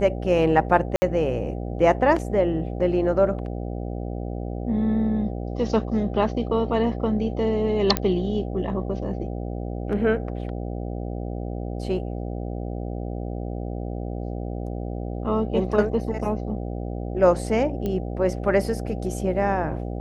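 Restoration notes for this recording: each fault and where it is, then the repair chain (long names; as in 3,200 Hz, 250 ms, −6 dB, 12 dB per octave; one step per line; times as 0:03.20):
mains buzz 60 Hz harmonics 13 −30 dBFS
0:00.96–0:01.02: drop-out 60 ms
0:07.97: click −6 dBFS
0:17.86: click −16 dBFS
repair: click removal
hum removal 60 Hz, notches 13
repair the gap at 0:00.96, 60 ms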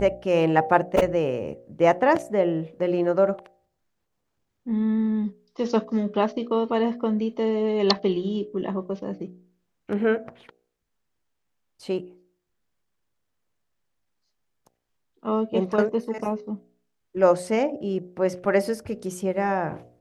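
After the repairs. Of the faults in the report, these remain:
none of them is left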